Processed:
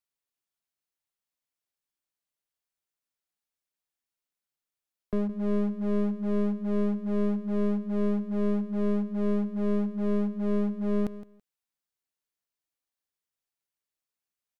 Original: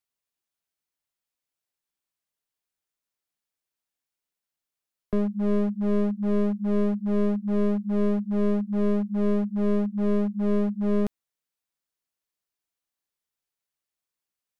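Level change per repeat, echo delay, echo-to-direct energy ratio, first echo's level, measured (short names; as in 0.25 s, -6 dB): -15.5 dB, 0.165 s, -15.0 dB, -15.0 dB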